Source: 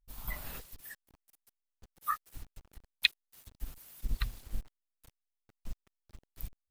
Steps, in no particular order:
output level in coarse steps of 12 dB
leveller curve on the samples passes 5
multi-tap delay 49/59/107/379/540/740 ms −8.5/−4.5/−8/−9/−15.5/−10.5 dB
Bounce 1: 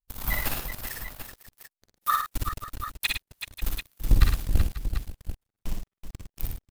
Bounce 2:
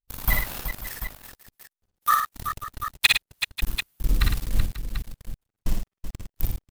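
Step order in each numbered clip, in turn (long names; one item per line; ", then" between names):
leveller curve on the samples, then output level in coarse steps, then multi-tap delay
output level in coarse steps, then leveller curve on the samples, then multi-tap delay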